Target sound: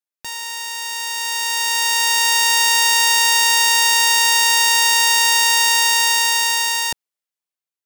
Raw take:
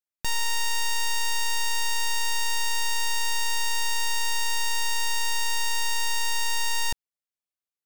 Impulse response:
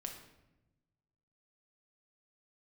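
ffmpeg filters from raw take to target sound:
-af "highpass=f=290:p=1,dynaudnorm=f=380:g=9:m=5.96"

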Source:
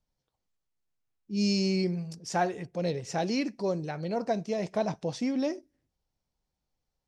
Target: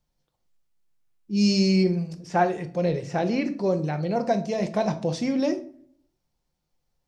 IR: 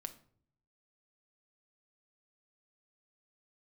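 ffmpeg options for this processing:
-filter_complex "[0:a]asettb=1/sr,asplit=3[s0][s1][s2];[s0]atrim=end=1.834[s3];[s1]atrim=start=1.83:end=4.16,asetpts=PTS-STARTPTS,afade=t=in:d=0.004:c=qsin,afade=t=out:st=2.326:d=0.004:c=qsin,acrossover=split=3000[s4][s5];[s5]acompressor=threshold=0.00224:ratio=4:attack=1:release=60[s6];[s4][s6]amix=inputs=2:normalize=0[s7];[s2]atrim=start=4.156[s8];[s3][s7]acrossfade=d=0.004:c1=hsin:c2=qsin[s9];[s9][s8]acrossfade=d=0.004:c1=qsin:c2=hsin[s10];[1:a]atrim=start_sample=2205[s11];[s10][s11]afir=irnorm=-1:irlink=0,volume=2.66"

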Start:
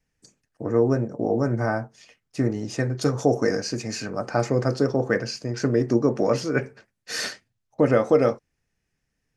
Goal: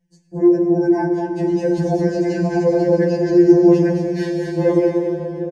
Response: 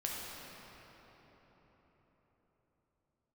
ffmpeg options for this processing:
-filter_complex "[0:a]dynaudnorm=f=270:g=13:m=2.82,asuperstop=centerf=1300:order=12:qfactor=4.2,alimiter=limit=0.335:level=0:latency=1:release=55,aecho=1:1:375:0.376,atempo=1.7,asplit=2[s0][s1];[1:a]atrim=start_sample=2205,asetrate=28224,aresample=44100[s2];[s1][s2]afir=irnorm=-1:irlink=0,volume=0.422[s3];[s0][s3]amix=inputs=2:normalize=0,acrossover=split=3100[s4][s5];[s5]acompressor=threshold=0.0126:ratio=4:attack=1:release=60[s6];[s4][s6]amix=inputs=2:normalize=0,equalizer=f=190:w=0.41:g=14.5,bandreject=f=301.5:t=h:w=4,bandreject=f=603:t=h:w=4,bandreject=f=904.5:t=h:w=4,bandreject=f=1206:t=h:w=4,bandreject=f=1507.5:t=h:w=4,bandreject=f=1809:t=h:w=4,bandreject=f=2110.5:t=h:w=4,bandreject=f=2412:t=h:w=4,bandreject=f=2713.5:t=h:w=4,bandreject=f=3015:t=h:w=4,bandreject=f=3316.5:t=h:w=4,bandreject=f=3618:t=h:w=4,bandreject=f=3919.5:t=h:w=4,bandreject=f=4221:t=h:w=4,bandreject=f=4522.5:t=h:w=4,bandreject=f=4824:t=h:w=4,bandreject=f=5125.5:t=h:w=4,bandreject=f=5427:t=h:w=4,bandreject=f=5728.5:t=h:w=4,bandreject=f=6030:t=h:w=4,bandreject=f=6331.5:t=h:w=4,bandreject=f=6633:t=h:w=4,bandreject=f=6934.5:t=h:w=4,bandreject=f=7236:t=h:w=4,bandreject=f=7537.5:t=h:w=4,bandreject=f=7839:t=h:w=4,bandreject=f=8140.5:t=h:w=4,bandreject=f=8442:t=h:w=4,bandreject=f=8743.5:t=h:w=4,bandreject=f=9045:t=h:w=4,bandreject=f=9346.5:t=h:w=4,bandreject=f=9648:t=h:w=4,bandreject=f=9949.5:t=h:w=4,bandreject=f=10251:t=h:w=4,bandreject=f=10552.5:t=h:w=4,bandreject=f=10854:t=h:w=4,bandreject=f=11155.5:t=h:w=4,afftfilt=real='re*2.83*eq(mod(b,8),0)':imag='im*2.83*eq(mod(b,8),0)':win_size=2048:overlap=0.75,volume=0.668"

